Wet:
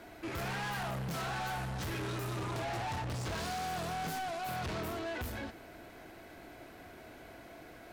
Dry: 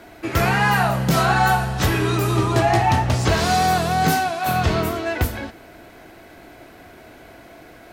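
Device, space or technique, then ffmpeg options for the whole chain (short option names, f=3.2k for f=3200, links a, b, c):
saturation between pre-emphasis and de-emphasis: -af "highshelf=f=8k:g=8,asoftclip=type=tanh:threshold=-28dB,highshelf=f=8k:g=-8,volume=-7.5dB"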